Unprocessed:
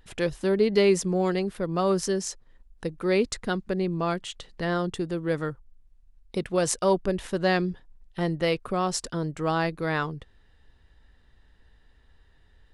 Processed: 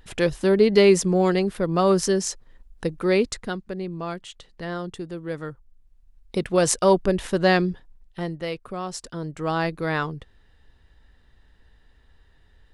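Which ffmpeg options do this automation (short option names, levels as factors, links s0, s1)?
-af "volume=11.2,afade=t=out:st=2.94:d=0.69:silence=0.354813,afade=t=in:st=5.4:d=1.22:silence=0.354813,afade=t=out:st=7.51:d=0.88:silence=0.316228,afade=t=in:st=9.01:d=0.68:silence=0.446684"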